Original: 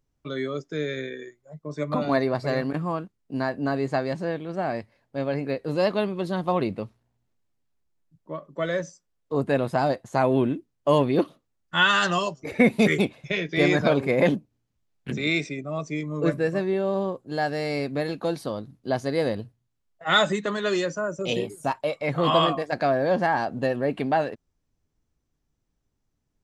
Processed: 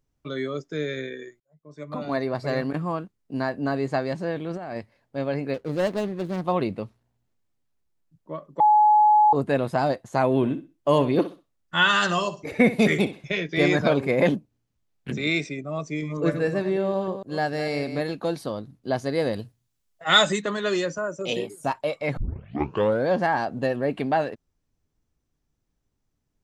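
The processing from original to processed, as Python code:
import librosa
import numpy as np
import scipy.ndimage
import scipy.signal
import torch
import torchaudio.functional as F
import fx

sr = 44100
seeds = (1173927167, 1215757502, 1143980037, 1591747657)

y = fx.over_compress(x, sr, threshold_db=-32.0, ratio=-1.0, at=(4.36, 4.77))
y = fx.median_filter(y, sr, points=41, at=(5.54, 6.45))
y = fx.echo_feedback(y, sr, ms=64, feedback_pct=23, wet_db=-14, at=(10.36, 13.35))
y = fx.reverse_delay(y, sr, ms=151, wet_db=-10.0, at=(15.87, 18.01))
y = fx.high_shelf(y, sr, hz=3200.0, db=9.5, at=(19.33, 20.42))
y = fx.highpass(y, sr, hz=220.0, slope=6, at=(20.98, 21.63))
y = fx.edit(y, sr, fx.fade_in_span(start_s=1.4, length_s=1.2),
    fx.bleep(start_s=8.6, length_s=0.73, hz=846.0, db=-13.0),
    fx.tape_start(start_s=22.17, length_s=0.9), tone=tone)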